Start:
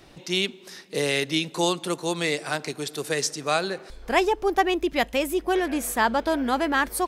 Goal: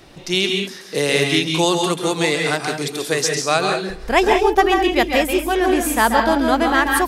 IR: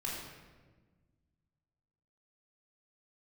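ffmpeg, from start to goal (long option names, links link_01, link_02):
-filter_complex "[0:a]asplit=2[link_01][link_02];[1:a]atrim=start_sample=2205,atrim=end_sample=3528,adelay=135[link_03];[link_02][link_03]afir=irnorm=-1:irlink=0,volume=-3dB[link_04];[link_01][link_04]amix=inputs=2:normalize=0,volume=5.5dB"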